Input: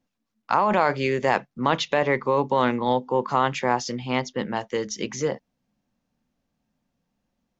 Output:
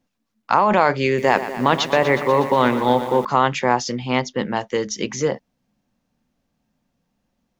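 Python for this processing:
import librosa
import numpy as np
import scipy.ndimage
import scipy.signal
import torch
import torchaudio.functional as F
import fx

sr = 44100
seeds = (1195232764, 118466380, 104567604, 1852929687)

y = fx.echo_crushed(x, sr, ms=121, feedback_pct=80, bits=7, wet_db=-12.0, at=(1.06, 3.25))
y = F.gain(torch.from_numpy(y), 4.5).numpy()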